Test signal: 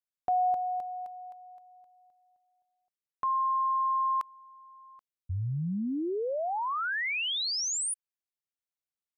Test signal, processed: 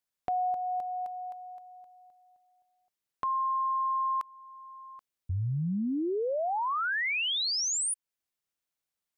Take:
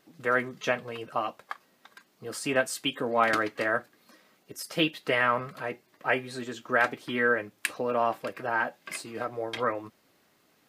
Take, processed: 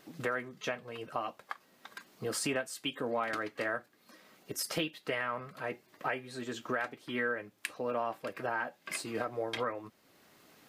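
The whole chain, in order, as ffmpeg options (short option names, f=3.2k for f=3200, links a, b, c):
-af "acompressor=threshold=-33dB:ratio=6:attack=2.6:release=618:knee=6:detection=rms,volume=5.5dB"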